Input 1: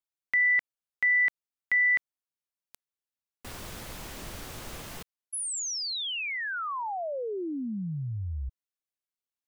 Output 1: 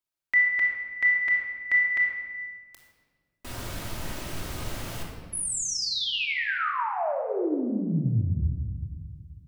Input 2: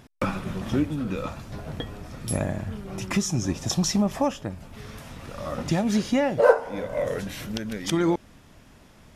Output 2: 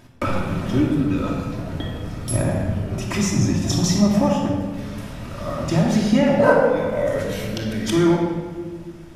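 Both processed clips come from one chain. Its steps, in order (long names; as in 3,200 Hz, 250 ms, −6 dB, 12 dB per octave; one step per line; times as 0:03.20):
rectangular room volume 1,800 cubic metres, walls mixed, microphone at 2.8 metres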